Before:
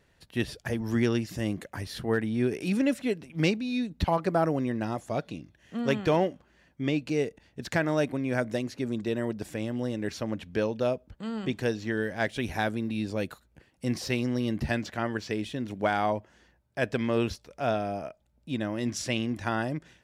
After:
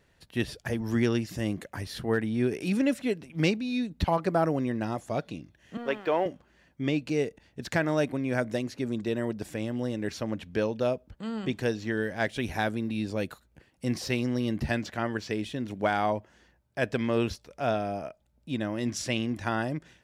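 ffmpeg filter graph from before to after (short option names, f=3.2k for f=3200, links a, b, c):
-filter_complex "[0:a]asettb=1/sr,asplit=3[a][b][c];[a]atrim=end=5.774[d];[b]atrim=start=5.77:end=6.26,asetpts=PTS-STARTPTS,afade=t=in:d=0.004:c=qsin,afade=t=out:st=0.486:d=0.004:c=qsin,highpass=400,lowpass=2.7k,aeval=exprs='sgn(val(0))*max(abs(val(0))-0.00126,0)':c=same[e];[c]atrim=start=6.256[f];[d][e]acrossfade=d=0.004:c1=hsin:c2=qsin[g];[g][f]acrossfade=d=0.004:c1=qsin:c2=hsin"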